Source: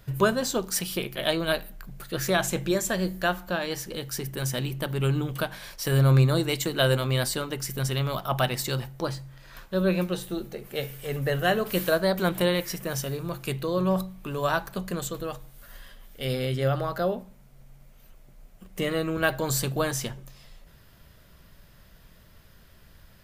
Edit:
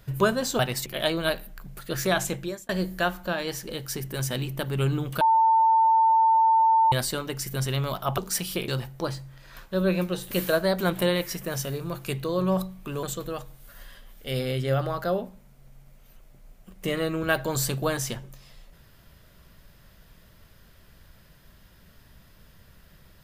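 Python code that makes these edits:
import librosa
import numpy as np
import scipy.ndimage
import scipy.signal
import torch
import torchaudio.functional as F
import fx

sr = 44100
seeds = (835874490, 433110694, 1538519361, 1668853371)

y = fx.edit(x, sr, fx.swap(start_s=0.59, length_s=0.5, other_s=8.41, other_length_s=0.27),
    fx.fade_out_span(start_s=2.45, length_s=0.47),
    fx.bleep(start_s=5.44, length_s=1.71, hz=896.0, db=-16.0),
    fx.cut(start_s=10.31, length_s=1.39),
    fx.cut(start_s=14.42, length_s=0.55), tone=tone)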